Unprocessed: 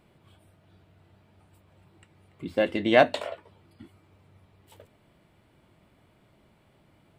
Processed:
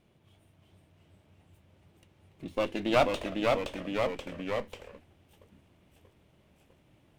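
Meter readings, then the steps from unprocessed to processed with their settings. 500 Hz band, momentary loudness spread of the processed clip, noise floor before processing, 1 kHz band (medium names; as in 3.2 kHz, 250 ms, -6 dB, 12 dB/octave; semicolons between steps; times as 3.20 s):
-3.5 dB, 16 LU, -63 dBFS, -2.5 dB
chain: comb filter that takes the minimum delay 0.31 ms; ever faster or slower copies 332 ms, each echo -1 st, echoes 3; trim -4.5 dB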